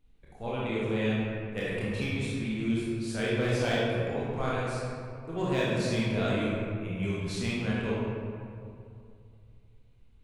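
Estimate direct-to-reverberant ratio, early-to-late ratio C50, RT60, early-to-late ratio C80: -8.0 dB, -3.5 dB, 2.5 s, -1.0 dB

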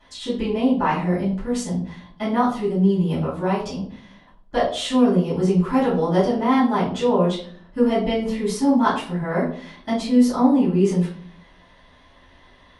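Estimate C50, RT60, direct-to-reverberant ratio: 5.5 dB, 0.50 s, -13.0 dB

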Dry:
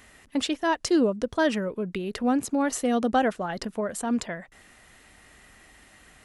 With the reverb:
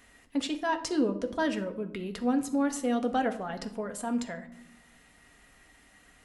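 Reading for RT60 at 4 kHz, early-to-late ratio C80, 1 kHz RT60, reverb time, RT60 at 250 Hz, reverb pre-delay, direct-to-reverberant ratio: 0.40 s, 16.0 dB, 0.80 s, 0.85 s, 1.5 s, 4 ms, 5.0 dB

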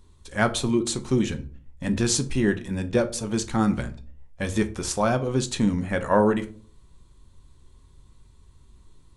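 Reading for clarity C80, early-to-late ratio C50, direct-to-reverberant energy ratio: 21.5 dB, 16.0 dB, 7.5 dB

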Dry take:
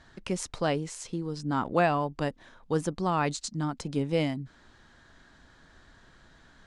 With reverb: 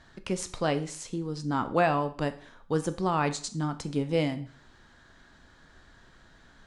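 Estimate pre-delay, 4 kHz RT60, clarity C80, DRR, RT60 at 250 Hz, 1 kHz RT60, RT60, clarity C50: 12 ms, 0.45 s, 18.5 dB, 10.0 dB, 0.50 s, 0.50 s, 0.50 s, 14.5 dB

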